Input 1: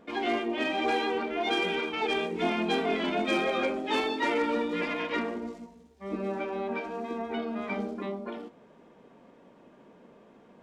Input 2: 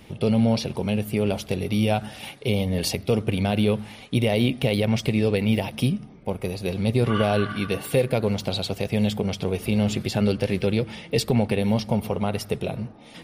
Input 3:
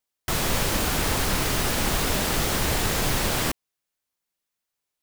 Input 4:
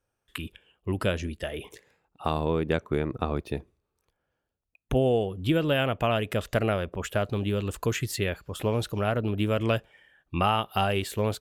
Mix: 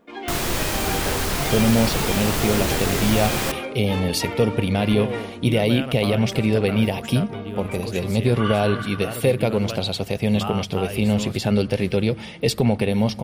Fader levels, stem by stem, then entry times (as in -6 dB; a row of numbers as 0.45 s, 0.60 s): -2.5 dB, +2.0 dB, 0.0 dB, -6.0 dB; 0.00 s, 1.30 s, 0.00 s, 0.00 s